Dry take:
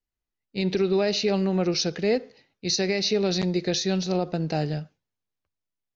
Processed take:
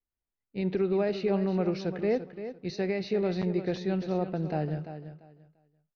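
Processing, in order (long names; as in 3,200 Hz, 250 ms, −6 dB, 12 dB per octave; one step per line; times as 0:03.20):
low-pass filter 1,900 Hz 12 dB per octave
repeating echo 343 ms, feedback 21%, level −11 dB
level −4 dB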